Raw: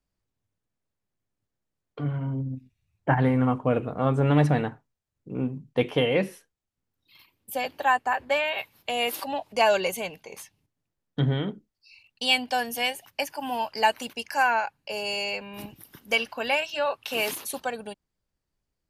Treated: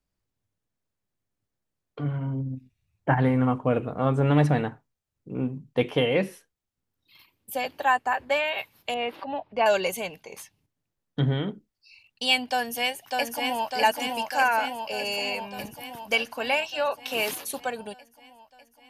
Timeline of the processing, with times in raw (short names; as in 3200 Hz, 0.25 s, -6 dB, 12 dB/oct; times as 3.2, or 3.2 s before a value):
8.94–9.66 air absorption 390 m
12.5–13.7 echo throw 0.6 s, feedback 70%, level -3 dB